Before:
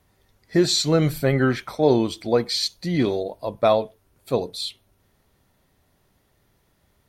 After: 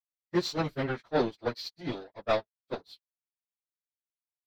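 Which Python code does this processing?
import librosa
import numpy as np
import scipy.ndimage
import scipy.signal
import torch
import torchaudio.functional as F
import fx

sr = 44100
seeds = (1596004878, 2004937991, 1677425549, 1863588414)

y = fx.power_curve(x, sr, exponent=2.0)
y = fx.stretch_vocoder_free(y, sr, factor=0.63)
y = fx.high_shelf_res(y, sr, hz=6600.0, db=-8.5, q=1.5)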